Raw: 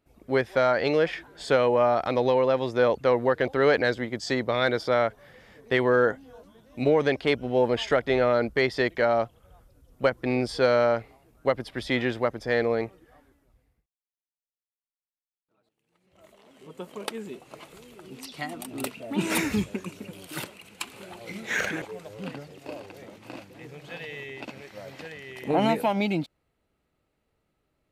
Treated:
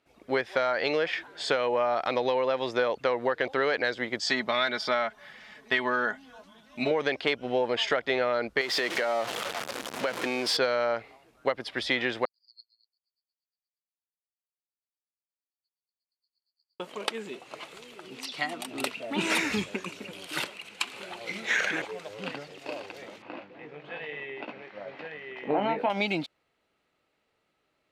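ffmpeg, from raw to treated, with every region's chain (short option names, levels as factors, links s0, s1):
-filter_complex "[0:a]asettb=1/sr,asplit=3[s0][s1][s2];[s0]atrim=end=4.254[s3];[s1]atrim=start=4.25:end=6.91,asetpts=PTS-STARTPTS,afade=t=in:d=0.004:c=qsin,afade=t=out:st=2.656:d=0.004:c=qsin,equalizer=f=460:w=3.2:g=-12,aecho=1:1:4.7:0.53,atrim=end_sample=117306[s4];[s2]atrim=start=6.906[s5];[s3][s4]acrossfade=d=0.004:c1=hsin:c2=qsin[s6];[s6][s5]acrossfade=d=0.004:c1=qsin:c2=hsin,asettb=1/sr,asplit=3[s7][s8][s9];[s7]atrim=end=8.614[s10];[s8]atrim=start=8.61:end=10.57,asetpts=PTS-STARTPTS,afade=t=in:d=0.004:c=qsin,afade=t=out:st=1.956:d=0.004:c=qsin,aeval=exprs='val(0)+0.5*0.0398*sgn(val(0))':c=same,highpass=190,acompressor=threshold=0.0562:ratio=5:attack=3.2:release=140:knee=1:detection=peak[s11];[s9]atrim=start=10.566[s12];[s10][s11]acrossfade=d=0.004:c1=hsin:c2=qsin[s13];[s13][s12]acrossfade=d=0.004:c1=qsin:c2=hsin,asettb=1/sr,asplit=3[s14][s15][s16];[s14]atrim=end=12.254[s17];[s15]atrim=start=12.25:end=16.8,asetpts=PTS-STARTPTS,afade=t=in:d=0.004:c=qsin,afade=t=out:st=4.546:d=0.004:c=qsin,asuperpass=centerf=4600:order=8:qfactor=7.4,aeval=exprs='val(0)*pow(10,-28*(0.5-0.5*cos(2*PI*8.5*n/s))/20)':c=same[s18];[s16]atrim=start=16.796[s19];[s17][s18]acrossfade=d=0.004:c1=hsin:c2=qsin[s20];[s20][s19]acrossfade=d=0.004:c1=qsin:c2=hsin,asettb=1/sr,asplit=3[s21][s22][s23];[s21]atrim=end=23.224[s24];[s22]atrim=start=23.22:end=25.9,asetpts=PTS-STARTPTS,afade=t=in:d=0.004:c=qsin,afade=t=out:st=2.676:d=0.004:c=qsin,highpass=130,lowpass=3200,highshelf=f=2300:g=-11,asplit=2[s25][s26];[s26]adelay=20,volume=0.398[s27];[s25][s27]amix=inputs=2:normalize=0,atrim=end_sample=118188[s28];[s23]atrim=start=25.896[s29];[s24][s28]acrossfade=d=0.004:c1=hsin:c2=qsin[s30];[s30][s29]acrossfade=d=0.004:c1=qsin:c2=hsin,lowpass=3500,aemphasis=mode=production:type=riaa,acompressor=threshold=0.0501:ratio=6,volume=1.5"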